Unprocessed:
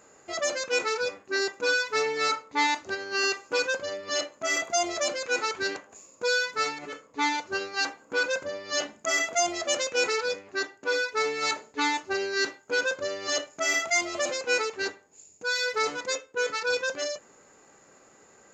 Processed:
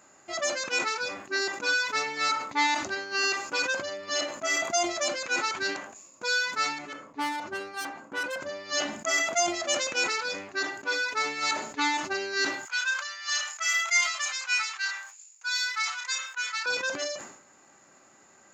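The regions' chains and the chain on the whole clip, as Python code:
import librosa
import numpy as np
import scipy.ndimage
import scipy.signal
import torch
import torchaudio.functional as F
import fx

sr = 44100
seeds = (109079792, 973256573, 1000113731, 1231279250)

y = fx.chain(x, sr, fx.self_delay(depth_ms=0.14),
    fx.high_shelf(hz=2600.0, db=-11.5), at=(6.93, 8.41))
y = fx.chain(y, sr, fx.highpass(hz=1100.0, slope=24),
    fx.doubler(ms=30.0, db=-7), at=(12.65, 16.66))
y = fx.highpass(y, sr, hz=120.0, slope=6)
y = fx.peak_eq(y, sr, hz=460.0, db=-14.5, octaves=0.26)
y = fx.sustainer(y, sr, db_per_s=78.0)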